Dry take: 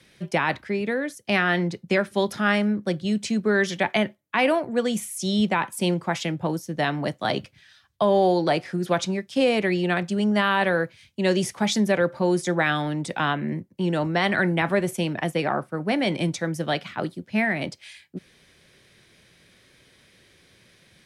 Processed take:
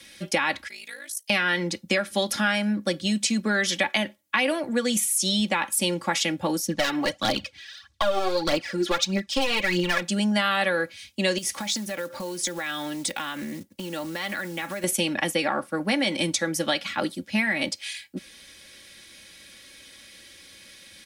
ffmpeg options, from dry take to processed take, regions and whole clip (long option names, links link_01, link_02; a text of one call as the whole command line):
ffmpeg -i in.wav -filter_complex "[0:a]asettb=1/sr,asplit=3[link_01][link_02][link_03];[link_01]atrim=end=0.684[link_04];[link_02]atrim=start=0.68:end=1.3,asetpts=PTS-STARTPTS,afade=type=in:duration=0.004:curve=qsin,afade=type=out:start_time=0.616:duration=0.004:curve=qsin,aderivative,aeval=exprs='val(0)*sin(2*PI*27*n/s)':channel_layout=same[link_05];[link_03]atrim=start=1.296[link_06];[link_04][link_05]acrossfade=duration=0.004:curve1=hsin:curve2=qsin[link_07];[link_07][link_06]acrossfade=duration=0.004:curve1=qsin:curve2=hsin,asettb=1/sr,asplit=3[link_08][link_09][link_10];[link_08]atrim=end=6.674[link_11];[link_09]atrim=start=6.67:end=10.02,asetpts=PTS-STARTPTS,afade=type=in:duration=0.004:curve=qsin,afade=type=out:start_time=3.346:duration=0.004:curve=qsin,lowpass=6200,aeval=exprs='clip(val(0),-1,0.0841)':channel_layout=same,aphaser=in_gain=1:out_gain=1:delay=3.1:decay=0.62:speed=1.6:type=triangular[link_12];[link_10]atrim=start=10.016[link_13];[link_11][link_12]acrossfade=duration=0.004:curve1=hsin:curve2=qsin[link_14];[link_14][link_13]acrossfade=duration=0.004:curve1=qsin:curve2=hsin,asettb=1/sr,asplit=3[link_15][link_16][link_17];[link_15]atrim=end=11.384[link_18];[link_16]atrim=start=11.38:end=14.84,asetpts=PTS-STARTPTS,afade=type=in:duration=0.004:curve=qsin,afade=type=out:start_time=3.456:duration=0.004:curve=qsin,acrusher=bits=6:mode=log:mix=0:aa=0.000001,acompressor=threshold=-31dB:ratio=10:attack=3.2:release=140:knee=1:detection=peak[link_19];[link_17]atrim=start=14.836[link_20];[link_18][link_19]acrossfade=duration=0.004:curve1=hsin:curve2=qsin[link_21];[link_21][link_20]acrossfade=duration=0.004:curve1=qsin:curve2=hsin,highshelf=frequency=2100:gain=12,aecho=1:1:3.6:0.67,acompressor=threshold=-21dB:ratio=4" out.wav